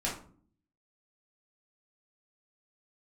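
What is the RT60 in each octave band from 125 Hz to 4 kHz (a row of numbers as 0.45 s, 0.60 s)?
0.80 s, 0.80 s, 0.55 s, 0.45 s, 0.35 s, 0.30 s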